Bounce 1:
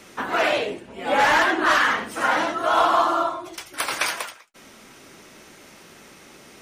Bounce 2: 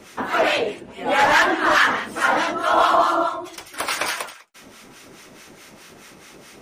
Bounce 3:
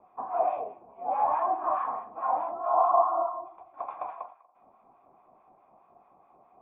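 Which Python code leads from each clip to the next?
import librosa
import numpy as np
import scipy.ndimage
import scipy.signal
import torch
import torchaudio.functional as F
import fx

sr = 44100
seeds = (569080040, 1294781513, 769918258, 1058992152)

y1 = fx.harmonic_tremolo(x, sr, hz=4.7, depth_pct=70, crossover_hz=1000.0)
y1 = y1 * 10.0 ** (5.5 / 20.0)
y2 = fx.formant_cascade(y1, sr, vowel='a')
y2 = fx.low_shelf(y2, sr, hz=440.0, db=6.0)
y2 = fx.echo_filtered(y2, sr, ms=239, feedback_pct=32, hz=1600.0, wet_db=-23.0)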